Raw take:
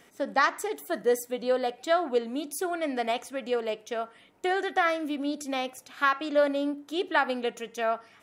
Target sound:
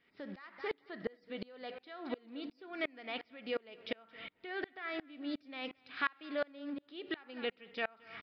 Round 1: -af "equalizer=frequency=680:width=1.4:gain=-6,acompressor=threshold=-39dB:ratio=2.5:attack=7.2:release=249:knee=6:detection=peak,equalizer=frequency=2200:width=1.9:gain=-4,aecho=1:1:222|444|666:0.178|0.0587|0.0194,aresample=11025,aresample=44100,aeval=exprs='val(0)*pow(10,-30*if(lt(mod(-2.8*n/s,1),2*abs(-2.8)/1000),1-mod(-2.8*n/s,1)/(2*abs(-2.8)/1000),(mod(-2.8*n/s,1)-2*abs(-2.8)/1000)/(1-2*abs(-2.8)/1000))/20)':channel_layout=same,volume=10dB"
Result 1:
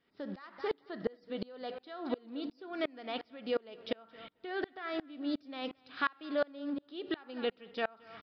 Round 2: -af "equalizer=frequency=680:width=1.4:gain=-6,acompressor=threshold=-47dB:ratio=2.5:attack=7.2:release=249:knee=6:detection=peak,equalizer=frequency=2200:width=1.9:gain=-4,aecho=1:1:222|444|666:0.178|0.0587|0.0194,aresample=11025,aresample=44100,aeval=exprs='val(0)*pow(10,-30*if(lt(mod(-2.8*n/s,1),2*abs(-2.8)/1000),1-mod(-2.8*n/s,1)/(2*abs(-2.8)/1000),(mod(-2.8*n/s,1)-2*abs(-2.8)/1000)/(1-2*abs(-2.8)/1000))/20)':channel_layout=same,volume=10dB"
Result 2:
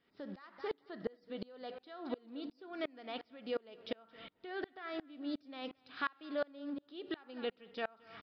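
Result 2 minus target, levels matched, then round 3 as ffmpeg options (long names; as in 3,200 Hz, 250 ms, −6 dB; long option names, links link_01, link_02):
2,000 Hz band −4.0 dB
-af "equalizer=frequency=680:width=1.4:gain=-6,acompressor=threshold=-47dB:ratio=2.5:attack=7.2:release=249:knee=6:detection=peak,equalizer=frequency=2200:width=1.9:gain=5.5,aecho=1:1:222|444|666:0.178|0.0587|0.0194,aresample=11025,aresample=44100,aeval=exprs='val(0)*pow(10,-30*if(lt(mod(-2.8*n/s,1),2*abs(-2.8)/1000),1-mod(-2.8*n/s,1)/(2*abs(-2.8)/1000),(mod(-2.8*n/s,1)-2*abs(-2.8)/1000)/(1-2*abs(-2.8)/1000))/20)':channel_layout=same,volume=10dB"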